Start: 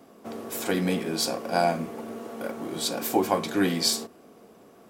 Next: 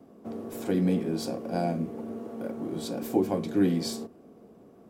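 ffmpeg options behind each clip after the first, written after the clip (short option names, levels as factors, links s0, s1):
-filter_complex "[0:a]acrossover=split=740|1400[s0][s1][s2];[s1]acompressor=threshold=0.00631:ratio=6[s3];[s0][s3][s2]amix=inputs=3:normalize=0,tiltshelf=f=720:g=8,volume=0.596"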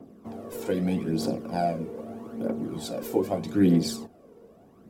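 -af "aphaser=in_gain=1:out_gain=1:delay=2.3:decay=0.57:speed=0.8:type=triangular"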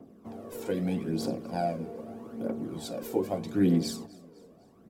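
-af "aecho=1:1:253|506|759:0.0708|0.0333|0.0156,volume=0.668"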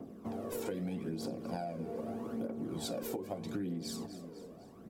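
-af "alimiter=level_in=1.06:limit=0.0631:level=0:latency=1:release=413,volume=0.944,acompressor=threshold=0.0112:ratio=6,volume=1.58"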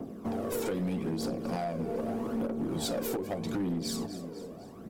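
-af "aeval=exprs='0.0531*(cos(1*acos(clip(val(0)/0.0531,-1,1)))-cos(1*PI/2))+0.0106*(cos(2*acos(clip(val(0)/0.0531,-1,1)))-cos(2*PI/2))+0.00596*(cos(4*acos(clip(val(0)/0.0531,-1,1)))-cos(4*PI/2))':c=same,asoftclip=type=hard:threshold=0.02,volume=2.24"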